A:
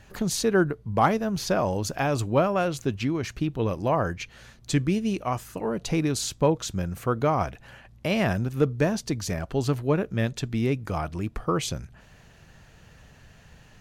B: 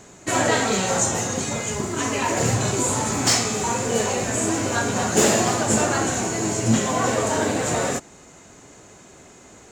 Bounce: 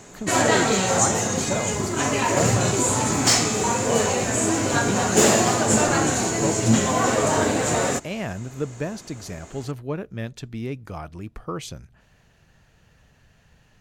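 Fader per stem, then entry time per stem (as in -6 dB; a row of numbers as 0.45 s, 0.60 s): -5.5 dB, +1.0 dB; 0.00 s, 0.00 s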